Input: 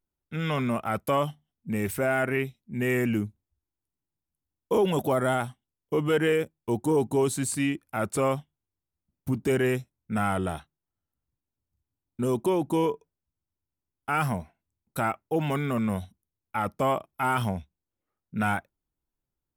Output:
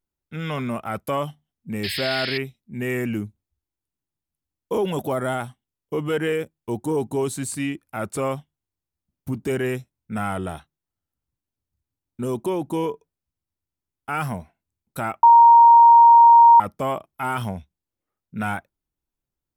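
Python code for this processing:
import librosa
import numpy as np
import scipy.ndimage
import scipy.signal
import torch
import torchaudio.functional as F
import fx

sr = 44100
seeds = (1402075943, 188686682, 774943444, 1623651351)

y = fx.spec_paint(x, sr, seeds[0], shape='noise', start_s=1.83, length_s=0.55, low_hz=1600.0, high_hz=5300.0, level_db=-29.0)
y = fx.edit(y, sr, fx.bleep(start_s=15.23, length_s=1.37, hz=934.0, db=-7.0), tone=tone)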